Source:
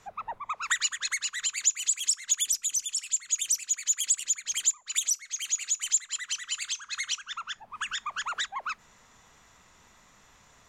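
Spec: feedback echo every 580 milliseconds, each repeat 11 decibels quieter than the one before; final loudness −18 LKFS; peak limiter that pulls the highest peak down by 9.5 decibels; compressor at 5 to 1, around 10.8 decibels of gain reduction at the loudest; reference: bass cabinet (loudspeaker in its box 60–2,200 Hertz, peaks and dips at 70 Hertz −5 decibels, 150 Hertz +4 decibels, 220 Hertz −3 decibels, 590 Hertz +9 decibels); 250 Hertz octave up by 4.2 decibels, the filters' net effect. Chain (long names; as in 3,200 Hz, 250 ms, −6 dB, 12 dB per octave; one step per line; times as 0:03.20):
parametric band 250 Hz +6.5 dB
downward compressor 5 to 1, threshold −33 dBFS
brickwall limiter −32 dBFS
loudspeaker in its box 60–2,200 Hz, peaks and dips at 70 Hz −5 dB, 150 Hz +4 dB, 220 Hz −3 dB, 590 Hz +9 dB
repeating echo 580 ms, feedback 28%, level −11 dB
level +28 dB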